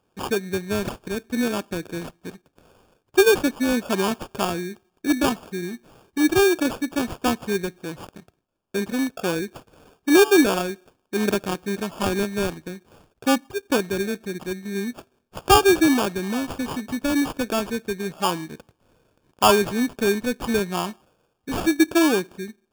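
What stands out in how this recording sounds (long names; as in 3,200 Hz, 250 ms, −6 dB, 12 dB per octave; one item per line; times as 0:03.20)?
aliases and images of a low sample rate 2,000 Hz, jitter 0%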